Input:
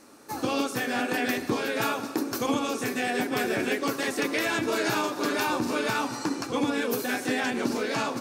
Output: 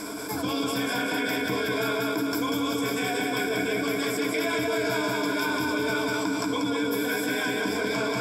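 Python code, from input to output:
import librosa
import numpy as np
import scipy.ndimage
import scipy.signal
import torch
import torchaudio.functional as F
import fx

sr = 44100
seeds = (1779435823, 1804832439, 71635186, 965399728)

y = fx.ripple_eq(x, sr, per_octave=1.7, db=16)
y = fx.echo_feedback(y, sr, ms=189, feedback_pct=53, wet_db=-3)
y = fx.env_flatten(y, sr, amount_pct=70)
y = y * 10.0 ** (-8.0 / 20.0)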